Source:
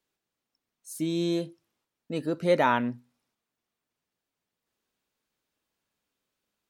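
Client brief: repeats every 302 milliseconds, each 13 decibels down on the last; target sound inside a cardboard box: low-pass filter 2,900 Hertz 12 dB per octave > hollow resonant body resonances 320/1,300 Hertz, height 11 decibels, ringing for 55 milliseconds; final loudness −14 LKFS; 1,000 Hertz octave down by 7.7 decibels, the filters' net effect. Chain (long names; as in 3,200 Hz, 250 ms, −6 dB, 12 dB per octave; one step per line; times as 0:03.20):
low-pass filter 2,900 Hz 12 dB per octave
parametric band 1,000 Hz −9 dB
repeating echo 302 ms, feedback 22%, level −13 dB
hollow resonant body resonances 320/1,300 Hz, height 11 dB, ringing for 55 ms
level +11 dB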